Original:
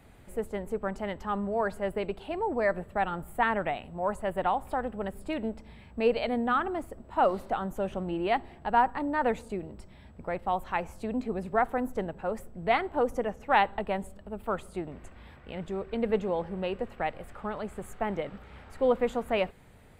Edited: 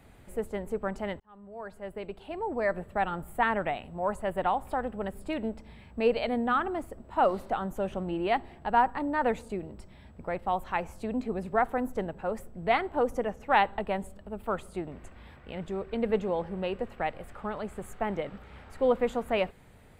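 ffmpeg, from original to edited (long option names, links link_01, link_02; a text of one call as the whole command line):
ffmpeg -i in.wav -filter_complex "[0:a]asplit=2[link_01][link_02];[link_01]atrim=end=1.2,asetpts=PTS-STARTPTS,afade=type=out:start_time=1.196:duration=0.004:curve=hsin[link_03];[link_02]atrim=start=1.2,asetpts=PTS-STARTPTS,afade=type=in:duration=1.74[link_04];[link_03][link_04]concat=n=2:v=0:a=1" out.wav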